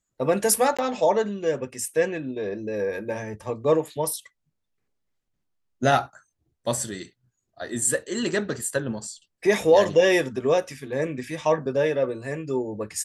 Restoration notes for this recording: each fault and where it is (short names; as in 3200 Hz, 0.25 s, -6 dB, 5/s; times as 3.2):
0.77–0.79 gap 16 ms